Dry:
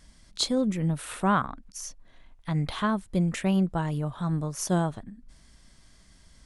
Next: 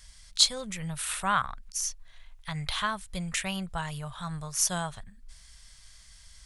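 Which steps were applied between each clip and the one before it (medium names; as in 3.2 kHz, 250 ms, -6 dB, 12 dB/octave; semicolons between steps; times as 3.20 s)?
amplifier tone stack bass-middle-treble 10-0-10; trim +8 dB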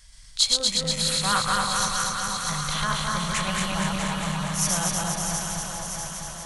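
backward echo that repeats 120 ms, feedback 82%, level -1 dB; echo whose repeats swap between lows and highs 323 ms, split 1.1 kHz, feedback 78%, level -4.5 dB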